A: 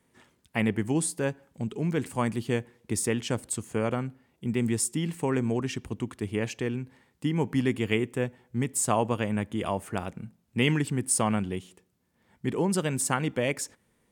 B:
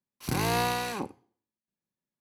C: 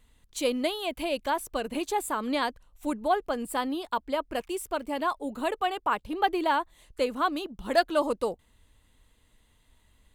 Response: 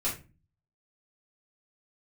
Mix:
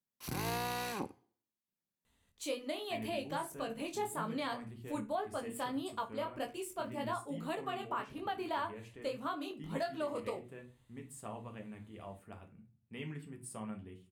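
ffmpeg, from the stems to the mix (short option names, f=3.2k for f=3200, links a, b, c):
-filter_complex "[0:a]equalizer=f=6.4k:t=o:w=0.89:g=-7.5,flanger=delay=9.3:depth=4.6:regen=-52:speed=0.44:shape=triangular,adelay=2350,volume=-19dB,asplit=2[a][b];[b]volume=-8dB[c];[1:a]equalizer=f=15k:w=1.5:g=7.5,volume=-4.5dB[d];[2:a]highpass=f=96:p=1,flanger=delay=17.5:depth=6.9:speed=1.8,adelay=2050,volume=-6.5dB,asplit=2[e][f];[f]volume=-13dB[g];[3:a]atrim=start_sample=2205[h];[c][g]amix=inputs=2:normalize=0[i];[i][h]afir=irnorm=-1:irlink=0[j];[a][d][e][j]amix=inputs=4:normalize=0,alimiter=level_in=3dB:limit=-24dB:level=0:latency=1:release=219,volume=-3dB"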